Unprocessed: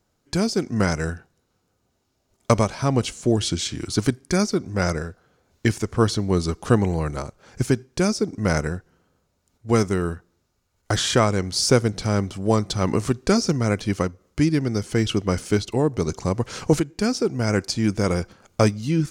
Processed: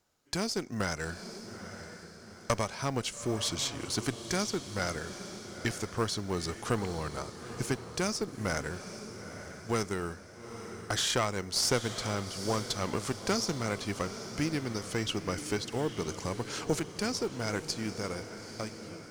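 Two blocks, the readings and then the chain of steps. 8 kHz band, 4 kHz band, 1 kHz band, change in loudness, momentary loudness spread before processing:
-5.0 dB, -5.5 dB, -8.0 dB, -10.5 dB, 8 LU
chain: ending faded out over 1.96 s; low shelf 460 Hz -9.5 dB; in parallel at +2 dB: compressor, threshold -34 dBFS, peak gain reduction 17.5 dB; on the sum: tube stage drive 8 dB, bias 0.7; short-mantissa float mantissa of 4-bit; on a send: diffused feedback echo 0.864 s, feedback 47%, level -10.5 dB; on the sum: gain -4.5 dB

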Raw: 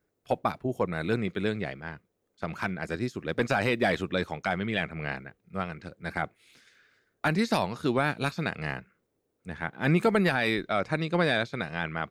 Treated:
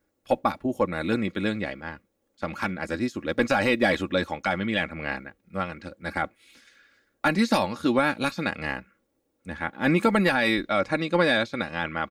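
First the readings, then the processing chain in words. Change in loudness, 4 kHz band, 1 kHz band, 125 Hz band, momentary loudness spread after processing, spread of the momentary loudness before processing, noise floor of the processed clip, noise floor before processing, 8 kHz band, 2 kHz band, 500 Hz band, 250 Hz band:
+3.5 dB, +4.0 dB, +3.5 dB, -1.5 dB, 12 LU, 13 LU, -75 dBFS, -78 dBFS, +4.0 dB, +3.5 dB, +3.0 dB, +4.0 dB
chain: comb 3.6 ms, depth 61%; gain +2.5 dB

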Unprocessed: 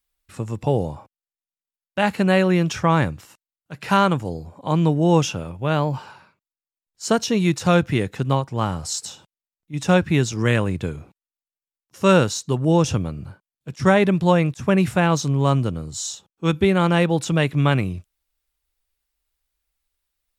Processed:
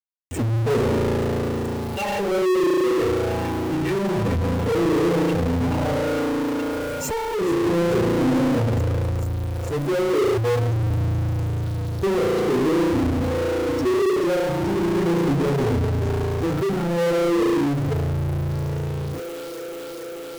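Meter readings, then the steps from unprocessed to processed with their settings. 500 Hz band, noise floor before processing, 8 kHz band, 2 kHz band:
+2.0 dB, under -85 dBFS, -6.0 dB, -4.0 dB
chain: minimum comb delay 2.2 ms; compressor 5:1, threshold -30 dBFS, peak gain reduction 15 dB; spring tank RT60 3.4 s, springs 35 ms, chirp 35 ms, DRR -5 dB; gate with hold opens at -37 dBFS; HPF 76 Hz 12 dB/oct; spectral gate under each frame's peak -10 dB strong; requantised 10-bit, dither none; tone controls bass -3 dB, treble -13 dB; phaser stages 6, 0.27 Hz, lowest notch 190–2200 Hz; EQ curve 180 Hz 0 dB, 270 Hz +12 dB, 1200 Hz -13 dB, 4600 Hz +4 dB; thin delay 0.435 s, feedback 74%, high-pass 1700 Hz, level -6 dB; power-law curve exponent 0.35

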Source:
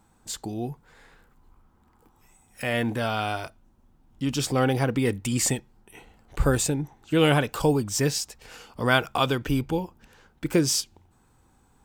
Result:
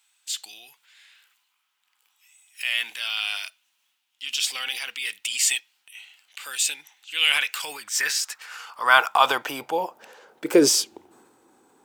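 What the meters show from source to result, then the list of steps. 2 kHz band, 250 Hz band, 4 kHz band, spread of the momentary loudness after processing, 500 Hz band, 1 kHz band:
+6.0 dB, -4.5 dB, +7.0 dB, 16 LU, -2.0 dB, +4.5 dB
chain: high-pass sweep 2800 Hz -> 350 Hz, 7.1–10.9; transient shaper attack -1 dB, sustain +6 dB; gain +3 dB

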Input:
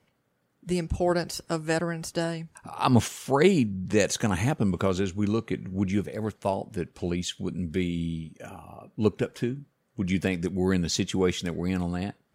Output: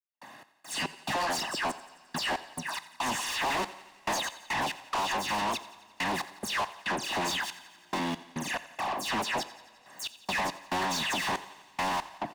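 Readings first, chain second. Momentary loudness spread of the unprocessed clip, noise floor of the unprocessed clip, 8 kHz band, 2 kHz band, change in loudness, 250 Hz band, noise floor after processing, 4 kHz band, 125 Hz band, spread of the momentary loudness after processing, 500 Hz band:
11 LU, -72 dBFS, -0.5 dB, +3.5 dB, -4.5 dB, -13.0 dB, -59 dBFS, +3.5 dB, -17.0 dB, 10 LU, -10.5 dB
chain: cycle switcher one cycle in 2, muted; HPF 200 Hz 12 dB/oct; high shelf 9100 Hz -8 dB; comb 1.1 ms, depth 73%; dynamic EQ 1000 Hz, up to +6 dB, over -44 dBFS, Q 2; compressor, threshold -33 dBFS, peak gain reduction 16.5 dB; dispersion lows, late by 0.149 s, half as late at 2700 Hz; overdrive pedal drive 27 dB, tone 6200 Hz, clips at -23 dBFS; step gate ".x.x.xxx." 70 bpm -60 dB; thinning echo 87 ms, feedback 58%, high-pass 420 Hz, level -18 dB; two-slope reverb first 0.72 s, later 2.9 s, from -18 dB, DRR 16 dB; three-band squash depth 40%

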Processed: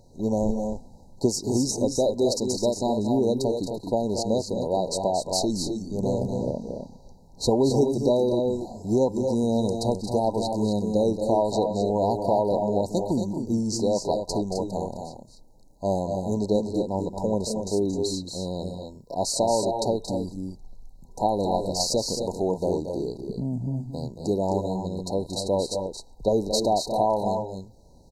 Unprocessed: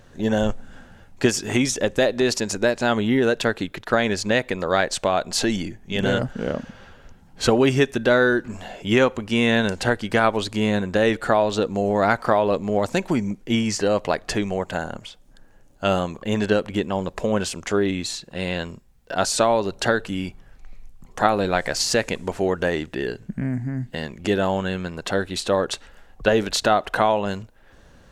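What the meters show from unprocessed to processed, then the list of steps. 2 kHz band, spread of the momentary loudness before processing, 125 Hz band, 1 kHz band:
under -40 dB, 10 LU, -2.5 dB, -4.0 dB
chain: FFT band-reject 1000–3800 Hz; on a send: loudspeakers at several distances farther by 78 m -9 dB, 89 m -7 dB; on the sum: gain -3.5 dB

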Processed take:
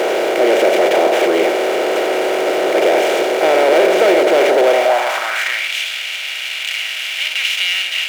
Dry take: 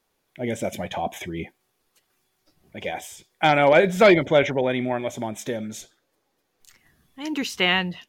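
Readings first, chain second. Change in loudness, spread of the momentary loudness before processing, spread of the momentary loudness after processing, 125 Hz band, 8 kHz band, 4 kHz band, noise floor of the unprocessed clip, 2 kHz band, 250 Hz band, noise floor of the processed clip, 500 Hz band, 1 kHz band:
+7.5 dB, 19 LU, 8 LU, under -10 dB, +11.5 dB, +12.0 dB, -73 dBFS, +8.5 dB, +5.0 dB, -24 dBFS, +10.5 dB, +8.5 dB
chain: per-bin compression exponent 0.2; power-law curve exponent 0.5; high-pass sweep 420 Hz -> 2700 Hz, 4.61–5.72; gain -12 dB

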